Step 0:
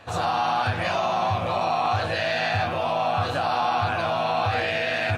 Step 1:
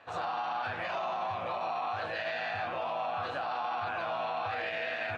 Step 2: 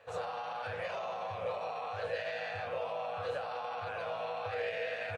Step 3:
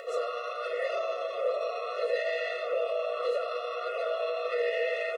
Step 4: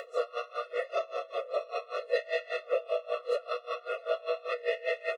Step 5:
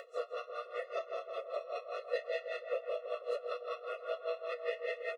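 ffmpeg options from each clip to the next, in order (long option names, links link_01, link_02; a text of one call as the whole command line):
ffmpeg -i in.wav -af "lowpass=2000,aemphasis=mode=production:type=riaa,alimiter=limit=-19.5dB:level=0:latency=1:release=21,volume=-6.5dB" out.wav
ffmpeg -i in.wav -af "firequalizer=gain_entry='entry(110,0);entry(320,-15);entry(470,9);entry(690,-6);entry(1100,-7);entry(2100,-4);entry(3700,-5);entry(8600,5)':delay=0.05:min_phase=1" out.wav
ffmpeg -i in.wav -filter_complex "[0:a]asplit=2[link_01][link_02];[link_02]alimiter=level_in=9.5dB:limit=-24dB:level=0:latency=1,volume=-9.5dB,volume=1dB[link_03];[link_01][link_03]amix=inputs=2:normalize=0,acompressor=mode=upward:threshold=-39dB:ratio=2.5,afftfilt=real='re*eq(mod(floor(b*sr/1024/360),2),1)':imag='im*eq(mod(floor(b*sr/1024/360),2),1)':win_size=1024:overlap=0.75,volume=4dB" out.wav
ffmpeg -i in.wav -af "aeval=exprs='val(0)*pow(10,-24*(0.5-0.5*cos(2*PI*5.1*n/s))/20)':channel_layout=same,volume=3.5dB" out.wav
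ffmpeg -i in.wav -filter_complex "[0:a]asplit=2[link_01][link_02];[link_02]adelay=162,lowpass=frequency=1800:poles=1,volume=-4.5dB,asplit=2[link_03][link_04];[link_04]adelay=162,lowpass=frequency=1800:poles=1,volume=0.54,asplit=2[link_05][link_06];[link_06]adelay=162,lowpass=frequency=1800:poles=1,volume=0.54,asplit=2[link_07][link_08];[link_08]adelay=162,lowpass=frequency=1800:poles=1,volume=0.54,asplit=2[link_09][link_10];[link_10]adelay=162,lowpass=frequency=1800:poles=1,volume=0.54,asplit=2[link_11][link_12];[link_12]adelay=162,lowpass=frequency=1800:poles=1,volume=0.54,asplit=2[link_13][link_14];[link_14]adelay=162,lowpass=frequency=1800:poles=1,volume=0.54[link_15];[link_01][link_03][link_05][link_07][link_09][link_11][link_13][link_15]amix=inputs=8:normalize=0,volume=-7.5dB" out.wav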